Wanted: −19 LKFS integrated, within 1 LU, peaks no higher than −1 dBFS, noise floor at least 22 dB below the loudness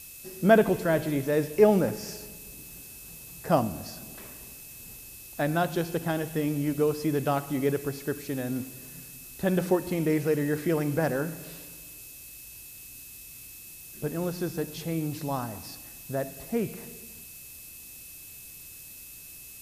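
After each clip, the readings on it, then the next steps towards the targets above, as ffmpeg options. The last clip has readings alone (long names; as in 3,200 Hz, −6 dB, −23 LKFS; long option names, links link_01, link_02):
interfering tone 2,600 Hz; level of the tone −54 dBFS; background noise floor −46 dBFS; target noise floor −50 dBFS; integrated loudness −28.0 LKFS; sample peak −7.0 dBFS; target loudness −19.0 LKFS
→ -af "bandreject=frequency=2600:width=30"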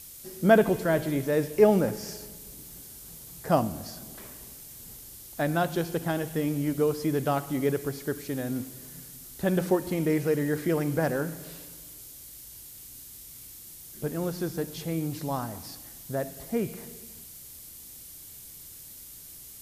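interfering tone none found; background noise floor −46 dBFS; target noise floor −50 dBFS
→ -af "afftdn=noise_reduction=6:noise_floor=-46"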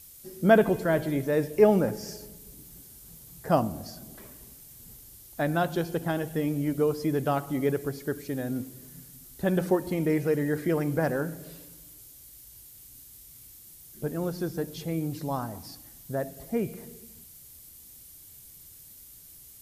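background noise floor −50 dBFS; integrated loudness −28.0 LKFS; sample peak −7.0 dBFS; target loudness −19.0 LKFS
→ -af "volume=9dB,alimiter=limit=-1dB:level=0:latency=1"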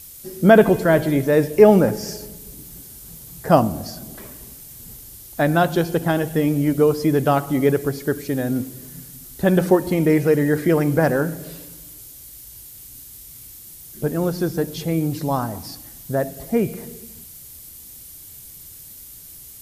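integrated loudness −19.0 LKFS; sample peak −1.0 dBFS; background noise floor −41 dBFS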